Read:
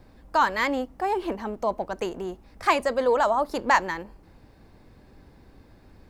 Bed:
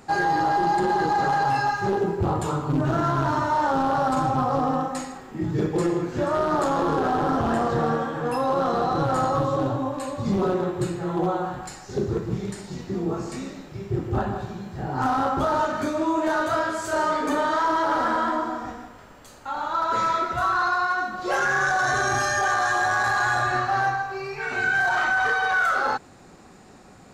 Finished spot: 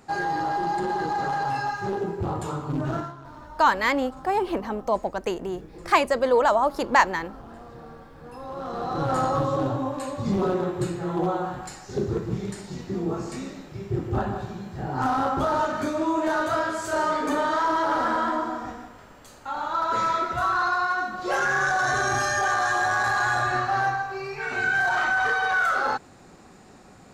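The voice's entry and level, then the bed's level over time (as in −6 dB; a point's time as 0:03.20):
3.25 s, +2.0 dB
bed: 0:02.97 −4.5 dB
0:03.17 −21 dB
0:08.11 −21 dB
0:09.12 −1 dB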